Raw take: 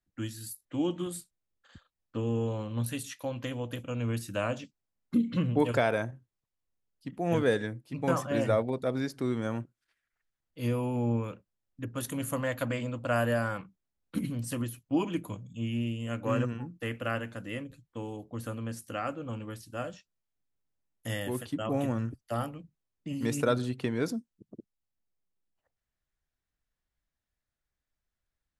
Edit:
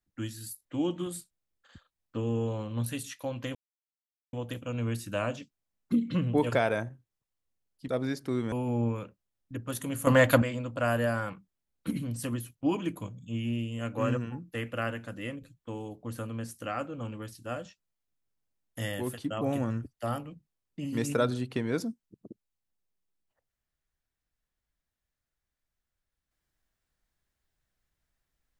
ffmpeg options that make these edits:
-filter_complex "[0:a]asplit=6[s0][s1][s2][s3][s4][s5];[s0]atrim=end=3.55,asetpts=PTS-STARTPTS,afade=t=out:st=3.546:d=0.004:c=hsin,apad=pad_dur=0.78[s6];[s1]atrim=start=3.55:end=7.102,asetpts=PTS-STARTPTS,afade=t=in:d=0.004:c=hsin[s7];[s2]atrim=start=8.808:end=9.452[s8];[s3]atrim=start=10.798:end=12.352[s9];[s4]atrim=start=12.348:end=12.702,asetpts=PTS-STARTPTS,volume=3.55[s10];[s5]atrim=start=12.698[s11];[s6][s7]concat=n=2:v=0:a=1[s12];[s12][s8]acrossfade=d=0.004:c1=hsin:c2=hsin[s13];[s13][s9]acrossfade=d=0.004:c1=hsin:c2=hsin[s14];[s14][s10]acrossfade=d=0.004:c1=hsin:c2=hsin[s15];[s15][s11]acrossfade=d=0.004:c1=hsin:c2=hsin"

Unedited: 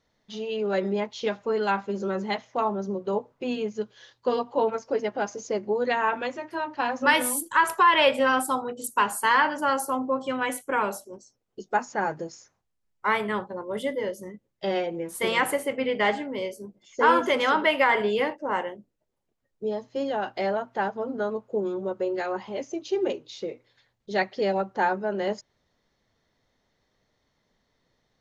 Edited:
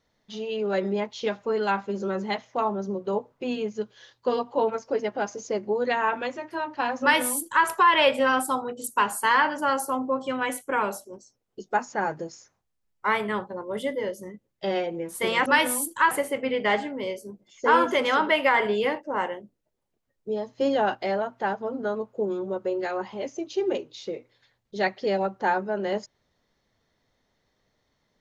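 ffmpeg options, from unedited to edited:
-filter_complex "[0:a]asplit=5[s0][s1][s2][s3][s4];[s0]atrim=end=15.462[s5];[s1]atrim=start=7.008:end=7.662[s6];[s2]atrim=start=15.458:end=19.932[s7];[s3]atrim=start=19.928:end=20.302,asetpts=PTS-STARTPTS,volume=1.78[s8];[s4]atrim=start=20.298[s9];[s5][s6]acrossfade=d=0.004:c1=hsin:c2=hsin[s10];[s10][s7]acrossfade=d=0.004:c1=hsin:c2=hsin[s11];[s11][s8]acrossfade=d=0.004:c1=hsin:c2=hsin[s12];[s12][s9]acrossfade=d=0.004:c1=hsin:c2=hsin"

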